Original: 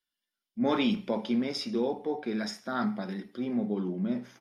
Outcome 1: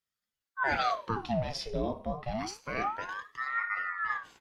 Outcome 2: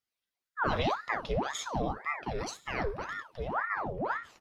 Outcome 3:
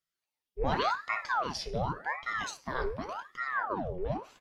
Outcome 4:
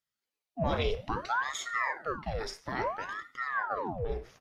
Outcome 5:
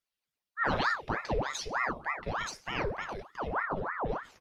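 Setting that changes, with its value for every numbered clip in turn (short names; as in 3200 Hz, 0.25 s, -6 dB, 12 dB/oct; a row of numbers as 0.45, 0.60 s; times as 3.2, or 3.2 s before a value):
ring modulator with a swept carrier, at: 0.27, 1.9, 0.88, 0.6, 3.3 Hz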